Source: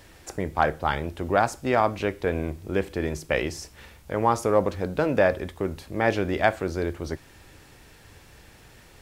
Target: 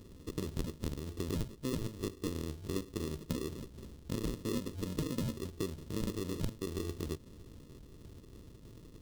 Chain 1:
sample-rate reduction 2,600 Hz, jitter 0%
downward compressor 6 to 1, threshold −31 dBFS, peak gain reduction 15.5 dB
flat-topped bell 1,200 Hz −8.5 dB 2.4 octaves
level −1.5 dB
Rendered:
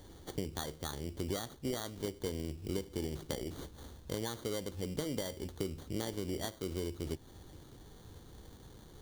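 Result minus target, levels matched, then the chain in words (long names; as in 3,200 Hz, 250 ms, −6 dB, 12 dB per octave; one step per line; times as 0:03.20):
sample-rate reduction: distortion −25 dB
sample-rate reduction 770 Hz, jitter 0%
downward compressor 6 to 1, threshold −31 dBFS, peak gain reduction 16 dB
flat-topped bell 1,200 Hz −8.5 dB 2.4 octaves
level −1.5 dB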